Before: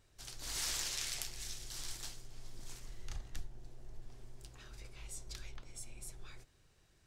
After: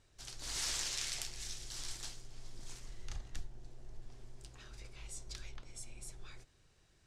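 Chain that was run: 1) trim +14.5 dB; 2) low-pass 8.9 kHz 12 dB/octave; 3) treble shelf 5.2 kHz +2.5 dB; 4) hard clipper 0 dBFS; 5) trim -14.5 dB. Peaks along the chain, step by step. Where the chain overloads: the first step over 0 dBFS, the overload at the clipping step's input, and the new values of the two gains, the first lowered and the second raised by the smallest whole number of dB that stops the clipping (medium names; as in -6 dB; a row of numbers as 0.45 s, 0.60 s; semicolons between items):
-1.5 dBFS, -5.0 dBFS, -3.5 dBFS, -3.5 dBFS, -18.0 dBFS; nothing clips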